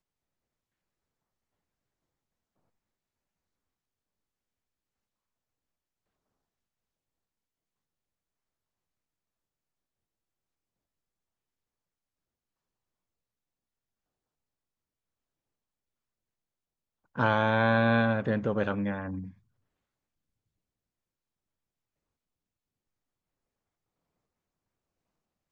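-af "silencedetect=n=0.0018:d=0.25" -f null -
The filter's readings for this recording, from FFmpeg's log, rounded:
silence_start: 0.00
silence_end: 17.15 | silence_duration: 17.15
silence_start: 19.38
silence_end: 25.52 | silence_duration: 6.14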